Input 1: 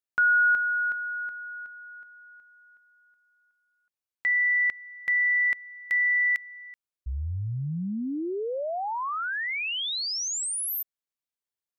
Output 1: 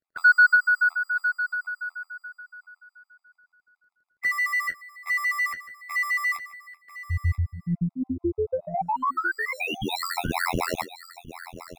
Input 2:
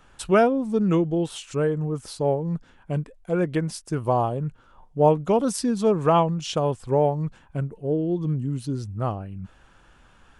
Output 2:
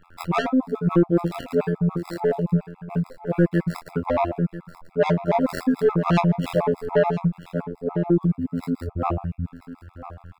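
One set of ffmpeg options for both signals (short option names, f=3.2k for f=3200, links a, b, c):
-filter_complex "[0:a]adynamicequalizer=threshold=0.0178:dfrequency=660:dqfactor=1.5:tfrequency=660:tqfactor=1.5:attack=5:release=100:ratio=0.4:range=2.5:mode=boostabove:tftype=bell,afftfilt=real='hypot(re,im)*cos(PI*b)':imag='0':win_size=2048:overlap=0.75,acrossover=split=260|2900[a][b][c];[a]aeval=exprs='0.119*(cos(1*acos(clip(val(0)/0.119,-1,1)))-cos(1*PI/2))+0.00075*(cos(3*acos(clip(val(0)/0.119,-1,1)))-cos(3*PI/2))+0.00237*(cos(8*acos(clip(val(0)/0.119,-1,1)))-cos(8*PI/2))':c=same[d];[c]acrusher=samples=14:mix=1:aa=0.000001[e];[d][b][e]amix=inputs=3:normalize=0,asoftclip=type=tanh:threshold=-18dB,asplit=2[f][g];[g]adelay=24,volume=-9.5dB[h];[f][h]amix=inputs=2:normalize=0,asplit=2[i][j];[j]aecho=0:1:987:0.188[k];[i][k]amix=inputs=2:normalize=0,afftfilt=real='re*gt(sin(2*PI*7*pts/sr)*(1-2*mod(floor(b*sr/1024/670),2)),0)':imag='im*gt(sin(2*PI*7*pts/sr)*(1-2*mod(floor(b*sr/1024/670),2)),0)':win_size=1024:overlap=0.75,volume=8.5dB"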